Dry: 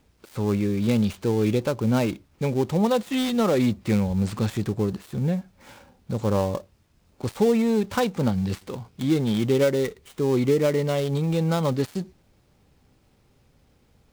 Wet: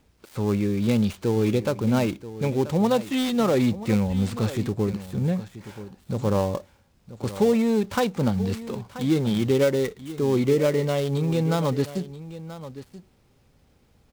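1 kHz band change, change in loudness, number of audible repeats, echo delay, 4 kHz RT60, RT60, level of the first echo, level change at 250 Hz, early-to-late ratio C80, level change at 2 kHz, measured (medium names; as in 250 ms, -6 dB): 0.0 dB, 0.0 dB, 1, 982 ms, no reverb, no reverb, -14.5 dB, 0.0 dB, no reverb, 0.0 dB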